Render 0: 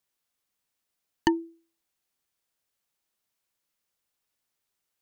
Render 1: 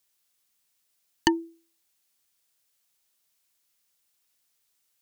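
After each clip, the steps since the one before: treble shelf 2.3 kHz +10 dB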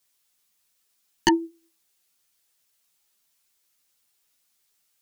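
three-phase chorus; trim +6 dB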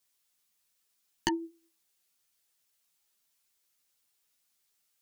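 compression, threshold -21 dBFS, peak gain reduction 7 dB; trim -5 dB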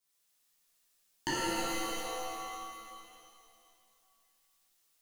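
pitch-shifted reverb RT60 2.4 s, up +7 st, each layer -2 dB, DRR -10 dB; trim -8.5 dB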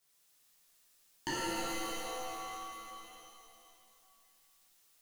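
companding laws mixed up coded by mu; trim -4.5 dB

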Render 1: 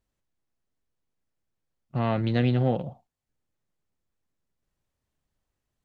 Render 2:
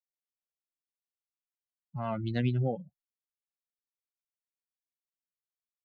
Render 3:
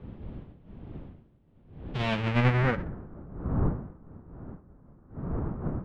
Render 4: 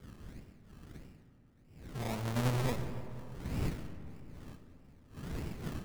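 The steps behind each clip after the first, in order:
expander on every frequency bin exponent 3; trim -2.5 dB
square wave that keeps the level; wind noise 190 Hz -36 dBFS; low-pass sweep 3.3 kHz -> 1.3 kHz, 1.96–3.18 s
decimation with a swept rate 24×, swing 60% 1.6 Hz; algorithmic reverb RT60 3.1 s, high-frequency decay 0.4×, pre-delay 35 ms, DRR 9.5 dB; trim -8.5 dB

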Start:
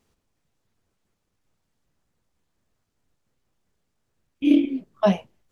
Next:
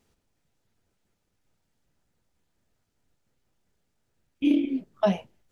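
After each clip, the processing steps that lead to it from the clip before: band-stop 1.1 kHz, Q 10; compression, threshold -18 dBFS, peak gain reduction 6.5 dB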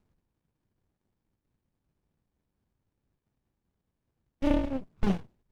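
sliding maximum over 65 samples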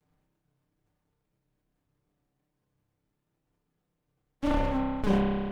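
comb filter that takes the minimum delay 6.7 ms; spring tank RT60 1.2 s, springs 30 ms, chirp 40 ms, DRR 1 dB; decay stretcher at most 30 dB/s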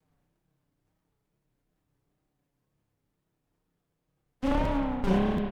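wow and flutter 110 cents; delay 176 ms -11 dB; crackling interface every 0.73 s, samples 512, repeat, from 0.98 s

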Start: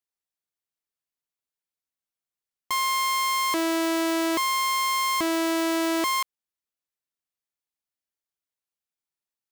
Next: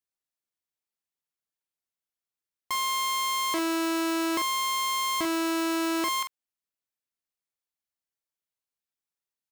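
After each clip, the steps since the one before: doubling 45 ms -8 dB; trim -3 dB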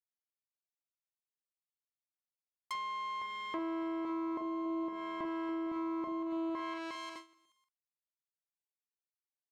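bouncing-ball echo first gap 510 ms, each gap 0.7×, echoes 5; low-pass that closes with the level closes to 710 Hz, closed at -21.5 dBFS; gate with hold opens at -25 dBFS; trim -8.5 dB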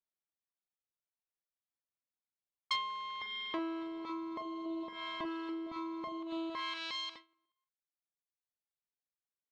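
reverb removal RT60 1.8 s; level-controlled noise filter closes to 1.2 kHz, open at -39.5 dBFS; peaking EQ 3.8 kHz +15 dB 1.2 oct; trim +1 dB

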